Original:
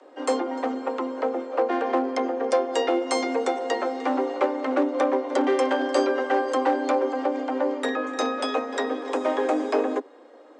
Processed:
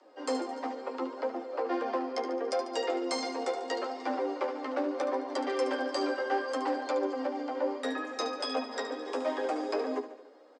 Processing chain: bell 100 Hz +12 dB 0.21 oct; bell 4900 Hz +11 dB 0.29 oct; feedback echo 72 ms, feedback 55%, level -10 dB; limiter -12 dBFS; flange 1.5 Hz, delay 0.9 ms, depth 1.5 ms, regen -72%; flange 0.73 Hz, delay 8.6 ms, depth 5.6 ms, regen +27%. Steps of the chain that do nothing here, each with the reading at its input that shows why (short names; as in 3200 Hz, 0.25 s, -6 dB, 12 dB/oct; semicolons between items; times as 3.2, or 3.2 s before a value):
bell 100 Hz: input band starts at 230 Hz